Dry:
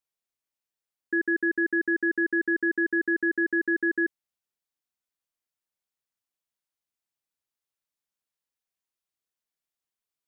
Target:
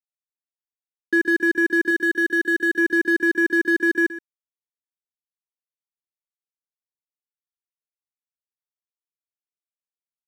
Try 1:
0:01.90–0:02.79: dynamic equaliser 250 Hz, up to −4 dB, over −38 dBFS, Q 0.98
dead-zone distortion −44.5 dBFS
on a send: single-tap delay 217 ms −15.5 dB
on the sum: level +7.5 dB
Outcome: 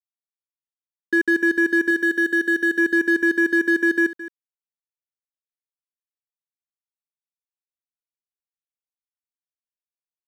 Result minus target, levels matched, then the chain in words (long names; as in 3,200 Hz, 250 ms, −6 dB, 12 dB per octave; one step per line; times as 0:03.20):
echo 94 ms late
0:01.90–0:02.79: dynamic equaliser 250 Hz, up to −4 dB, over −38 dBFS, Q 0.98
dead-zone distortion −44.5 dBFS
on a send: single-tap delay 123 ms −15.5 dB
on the sum: level +7.5 dB